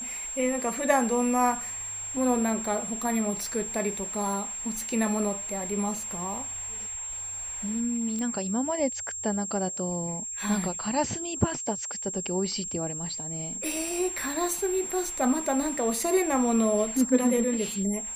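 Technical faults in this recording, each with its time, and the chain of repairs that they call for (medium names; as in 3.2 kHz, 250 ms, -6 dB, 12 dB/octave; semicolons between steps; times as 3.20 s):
whine 7.5 kHz -33 dBFS
8.19 s: pop -22 dBFS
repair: de-click; band-stop 7.5 kHz, Q 30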